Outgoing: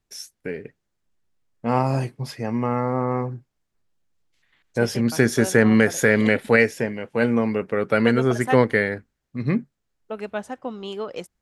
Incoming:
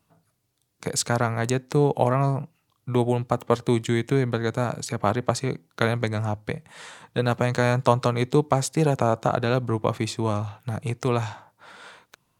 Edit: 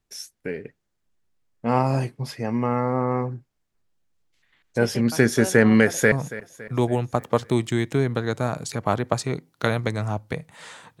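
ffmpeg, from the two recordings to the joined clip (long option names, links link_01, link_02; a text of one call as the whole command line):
ffmpeg -i cue0.wav -i cue1.wav -filter_complex "[0:a]apad=whole_dur=11,atrim=end=11,atrim=end=6.122[link_01];[1:a]atrim=start=2.288:end=7.17[link_02];[link_01][link_02]acrossfade=duration=0.004:curve1=hsin:curve2=hsin,asplit=2[link_03][link_04];[link_04]afade=type=in:start_time=5.85:duration=0.01,afade=type=out:start_time=6.12:duration=0.01,aecho=0:1:280|560|840|1120|1400:0.158489|0.0871691|0.047943|0.0263687|0.0145028[link_05];[link_03][link_05]amix=inputs=2:normalize=0" out.wav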